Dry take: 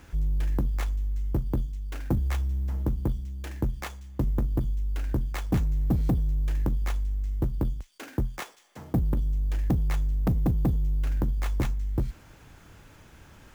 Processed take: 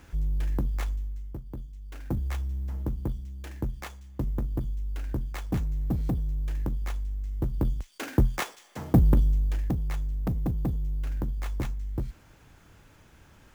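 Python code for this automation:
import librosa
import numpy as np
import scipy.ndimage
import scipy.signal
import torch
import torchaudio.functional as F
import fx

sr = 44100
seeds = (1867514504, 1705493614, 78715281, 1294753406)

y = fx.gain(x, sr, db=fx.line((0.92, -1.5), (1.42, -13.0), (2.18, -3.5), (7.31, -3.5), (8.01, 6.0), (9.17, 6.0), (9.75, -4.0)))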